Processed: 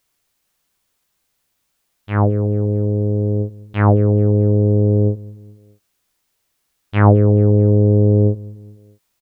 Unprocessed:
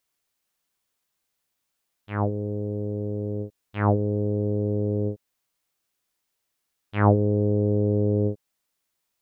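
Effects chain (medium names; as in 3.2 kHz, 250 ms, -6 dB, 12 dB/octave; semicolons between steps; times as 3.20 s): bass shelf 120 Hz +6.5 dB; in parallel at 0 dB: peak limiter -16.5 dBFS, peak gain reduction 10 dB; on the sum: feedback delay 211 ms, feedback 48%, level -21 dB; trim +2.5 dB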